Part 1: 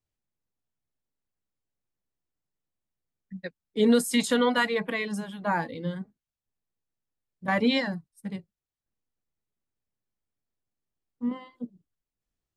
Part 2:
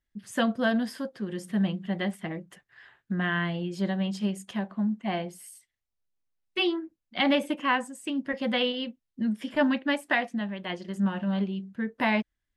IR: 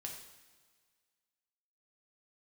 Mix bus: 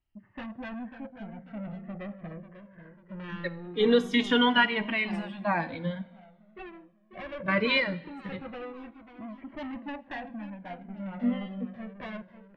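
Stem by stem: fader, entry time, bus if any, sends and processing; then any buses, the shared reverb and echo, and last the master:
+1.5 dB, 0.00 s, send -6.5 dB, no echo send, drifting ripple filter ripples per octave 1.1, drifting -0.42 Hz, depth 10 dB
+1.0 dB, 0.00 s, send -16 dB, echo send -10 dB, Bessel low-pass 1.1 kHz, order 8; saturation -33.5 dBFS, distortion -7 dB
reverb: on, pre-delay 3 ms
echo: feedback delay 542 ms, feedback 49%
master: resonant low-pass 2.8 kHz, resonance Q 1.7; Shepard-style flanger falling 0.21 Hz

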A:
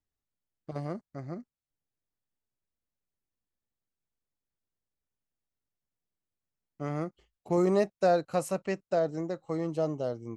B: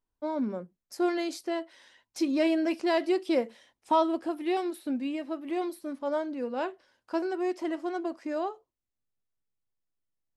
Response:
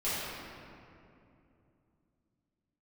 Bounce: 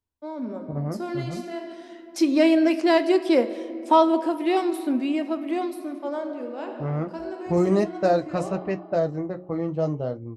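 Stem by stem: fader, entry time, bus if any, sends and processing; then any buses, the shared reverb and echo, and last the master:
-2.0 dB, 0.00 s, no send, level-controlled noise filter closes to 480 Hz, open at -22 dBFS; flange 0.37 Hz, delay 8.9 ms, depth 7.5 ms, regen -55%
-3.0 dB, 0.00 s, send -20 dB, high-pass 220 Hz 24 dB/octave; auto duck -15 dB, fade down 1.45 s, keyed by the first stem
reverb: on, RT60 2.7 s, pre-delay 4 ms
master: peaking EQ 72 Hz +13 dB 1.8 oct; de-hum 90.79 Hz, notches 6; level rider gain up to 9 dB

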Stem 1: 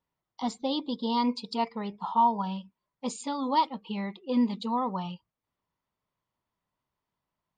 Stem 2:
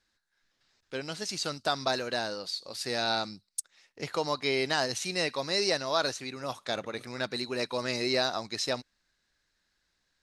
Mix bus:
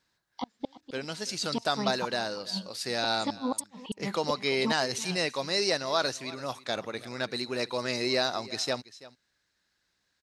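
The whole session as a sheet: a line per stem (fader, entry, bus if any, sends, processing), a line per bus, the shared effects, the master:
+2.5 dB, 0.00 s, no send, echo send -17.5 dB, inverted gate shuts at -23 dBFS, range -38 dB
+0.5 dB, 0.00 s, no send, echo send -18.5 dB, high-pass 61 Hz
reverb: none
echo: delay 334 ms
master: none

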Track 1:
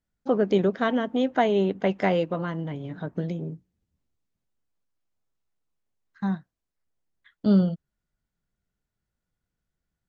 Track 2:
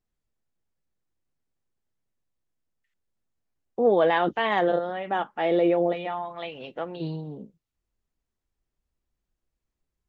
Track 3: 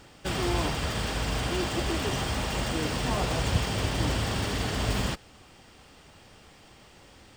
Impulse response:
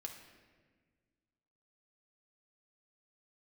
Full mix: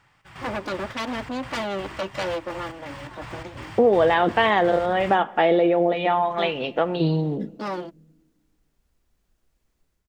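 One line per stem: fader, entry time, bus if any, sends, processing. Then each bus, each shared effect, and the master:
-12.0 dB, 0.15 s, no send, comb filter that takes the minimum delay 3.5 ms; sine folder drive 10 dB, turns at -10 dBFS; high-pass 310 Hz 12 dB/octave
-1.0 dB, 0.00 s, send -8 dB, compression 5:1, threshold -27 dBFS, peak gain reduction 11 dB; level rider gain up to 11 dB
-16.0 dB, 0.00 s, no send, square tremolo 2.8 Hz, depth 60%, duty 60%; graphic EQ 125/250/500/1000/2000 Hz +10/-4/-4/+11/+11 dB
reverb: on, RT60 1.5 s, pre-delay 4 ms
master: none

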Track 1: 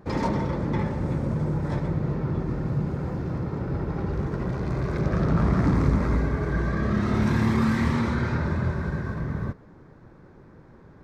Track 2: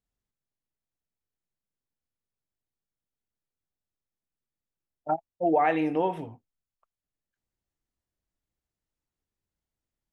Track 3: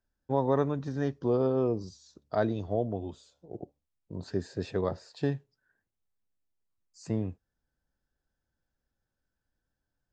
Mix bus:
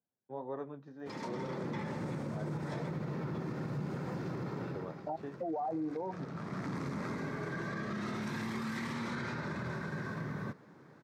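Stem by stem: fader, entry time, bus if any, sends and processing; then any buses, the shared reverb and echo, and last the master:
-13.5 dB, 1.00 s, no send, tilt shelf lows -4 dB, about 1.4 kHz; level rider gain up to 10.5 dB; auto duck -13 dB, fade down 0.45 s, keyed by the second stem
+1.0 dB, 0.00 s, no send, steep low-pass 980 Hz; reverb removal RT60 1.9 s; peak limiter -21 dBFS, peak gain reduction 6.5 dB
-9.5 dB, 0.00 s, no send, tone controls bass -5 dB, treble -13 dB; flange 1.9 Hz, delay 9.5 ms, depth 4.4 ms, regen -43%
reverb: none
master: high-pass 130 Hz 24 dB/octave; peak limiter -30 dBFS, peak gain reduction 11 dB

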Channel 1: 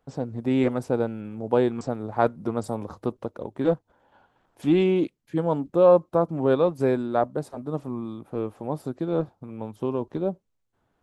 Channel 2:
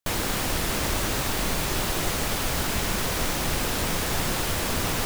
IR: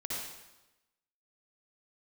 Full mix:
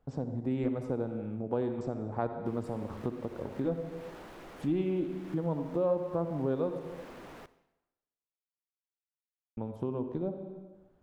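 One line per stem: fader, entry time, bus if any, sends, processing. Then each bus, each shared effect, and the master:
-5.0 dB, 0.00 s, muted 6.79–9.57 s, send -8 dB, none
-12.5 dB, 2.40 s, send -18.5 dB, three-band isolator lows -22 dB, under 220 Hz, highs -12 dB, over 2.6 kHz; saturation -35.5 dBFS, distortion -8 dB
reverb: on, RT60 1.0 s, pre-delay 53 ms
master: tilt EQ -2 dB/octave; compression 2:1, threshold -36 dBFS, peak gain reduction 13.5 dB

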